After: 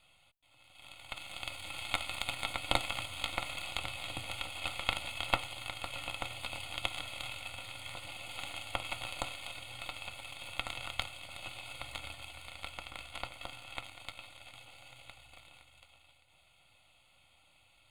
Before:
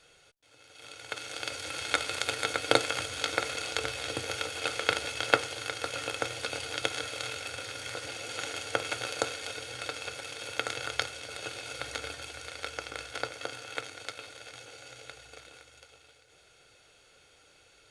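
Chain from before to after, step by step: partial rectifier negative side -7 dB; static phaser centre 1.6 kHz, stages 6

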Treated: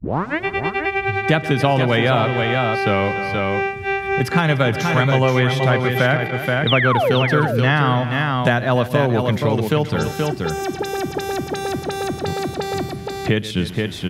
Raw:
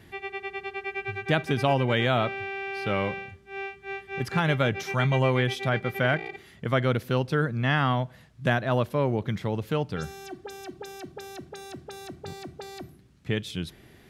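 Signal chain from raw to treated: tape start-up on the opening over 0.44 s; painted sound fall, 6.67–7.13 s, 390–3900 Hz -25 dBFS; on a send: multi-tap echo 124/292/477 ms -17/-16.5/-6.5 dB; on the sum: three bands compressed up and down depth 70%; trim +7.5 dB

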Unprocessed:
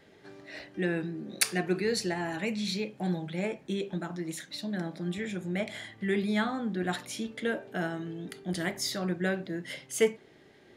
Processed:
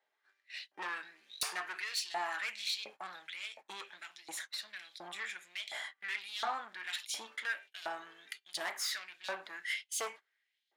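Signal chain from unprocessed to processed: valve stage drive 32 dB, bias 0.25; gate -45 dBFS, range -22 dB; LFO high-pass saw up 1.4 Hz 740–3900 Hz

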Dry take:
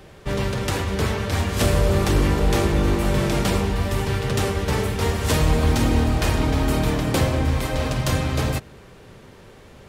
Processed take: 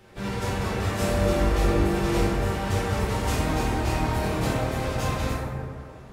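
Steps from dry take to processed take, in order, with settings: bass shelf 420 Hz -2.5 dB; plain phase-vocoder stretch 0.62×; plate-style reverb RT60 2.2 s, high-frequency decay 0.35×, DRR -8.5 dB; trim -8 dB

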